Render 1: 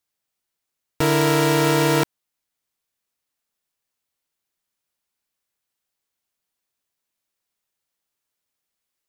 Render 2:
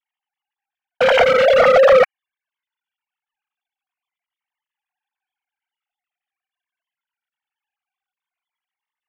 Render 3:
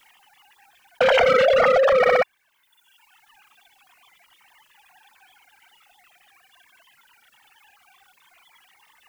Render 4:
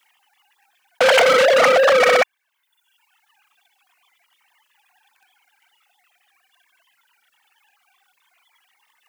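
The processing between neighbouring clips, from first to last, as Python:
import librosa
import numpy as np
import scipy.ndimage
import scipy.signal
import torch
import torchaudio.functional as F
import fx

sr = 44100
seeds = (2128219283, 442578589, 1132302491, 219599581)

y1 = fx.sine_speech(x, sr)
y1 = fx.leveller(y1, sr, passes=2)
y1 = fx.comb_cascade(y1, sr, direction='falling', hz=0.23)
y1 = y1 * 10.0 ** (7.5 / 20.0)
y2 = fx.dereverb_blind(y1, sr, rt60_s=0.81)
y2 = fx.echo_feedback(y2, sr, ms=62, feedback_pct=38, wet_db=-21.0)
y2 = fx.env_flatten(y2, sr, amount_pct=100)
y2 = y2 * 10.0 ** (-6.0 / 20.0)
y3 = fx.leveller(y2, sr, passes=3)
y3 = fx.highpass(y3, sr, hz=560.0, slope=6)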